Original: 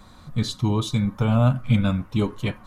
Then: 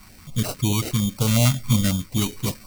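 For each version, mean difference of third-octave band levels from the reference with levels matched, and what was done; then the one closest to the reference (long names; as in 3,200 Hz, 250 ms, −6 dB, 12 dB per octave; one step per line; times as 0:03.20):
9.0 dB: decimation without filtering 13×
high-shelf EQ 2,800 Hz +11.5 dB
notch on a step sequencer 11 Hz 510–1,900 Hz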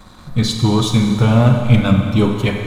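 6.0 dB: mains-hum notches 50/100/150/200 Hz
leveller curve on the samples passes 1
four-comb reverb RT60 2.3 s, combs from 31 ms, DRR 4 dB
level +5 dB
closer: second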